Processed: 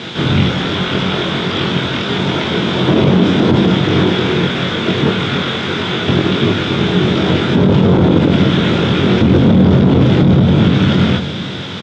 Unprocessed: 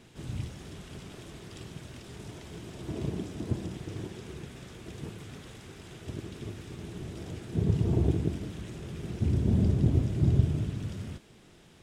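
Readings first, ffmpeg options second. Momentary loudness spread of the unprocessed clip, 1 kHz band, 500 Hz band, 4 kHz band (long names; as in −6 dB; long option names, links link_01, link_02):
19 LU, +30.5 dB, +24.5 dB, +32.0 dB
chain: -filter_complex "[0:a]equalizer=frequency=3400:width_type=o:width=0.55:gain=3,aeval=exprs='clip(val(0),-1,0.0266)':channel_layout=same,asplit=2[link_01][link_02];[link_02]adelay=22,volume=-3dB[link_03];[link_01][link_03]amix=inputs=2:normalize=0,acrossover=split=2900[link_04][link_05];[link_05]acompressor=threshold=-58dB:ratio=4:attack=1:release=60[link_06];[link_04][link_06]amix=inputs=2:normalize=0,highpass=140,equalizer=frequency=200:width_type=q:width=4:gain=4,equalizer=frequency=520:width_type=q:width=4:gain=3,equalizer=frequency=960:width_type=q:width=4:gain=4,equalizer=frequency=1400:width_type=q:width=4:gain=8,equalizer=frequency=2200:width_type=q:width=4:gain=4,equalizer=frequency=3500:width_type=q:width=4:gain=10,lowpass=frequency=5800:width=0.5412,lowpass=frequency=5800:width=1.3066,aecho=1:1:728:0.158,alimiter=level_in=27dB:limit=-1dB:release=50:level=0:latency=1,volume=-1dB"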